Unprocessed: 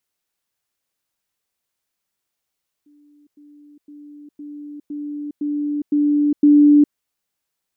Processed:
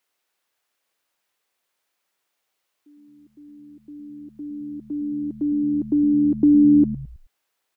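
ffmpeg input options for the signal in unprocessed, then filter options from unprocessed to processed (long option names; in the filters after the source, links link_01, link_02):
-f lavfi -i "aevalsrc='pow(10,(-49.5+6*floor(t/0.51))/20)*sin(2*PI*293*t)*clip(min(mod(t,0.51),0.41-mod(t,0.51))/0.005,0,1)':duration=4.08:sample_rate=44100"
-filter_complex "[0:a]bass=frequency=250:gain=-14,treble=frequency=4000:gain=-6,asplit=2[link_01][link_02];[link_02]acompressor=threshold=-27dB:ratio=6,volume=2dB[link_03];[link_01][link_03]amix=inputs=2:normalize=0,asplit=5[link_04][link_05][link_06][link_07][link_08];[link_05]adelay=107,afreqshift=-78,volume=-13.5dB[link_09];[link_06]adelay=214,afreqshift=-156,volume=-20.6dB[link_10];[link_07]adelay=321,afreqshift=-234,volume=-27.8dB[link_11];[link_08]adelay=428,afreqshift=-312,volume=-34.9dB[link_12];[link_04][link_09][link_10][link_11][link_12]amix=inputs=5:normalize=0"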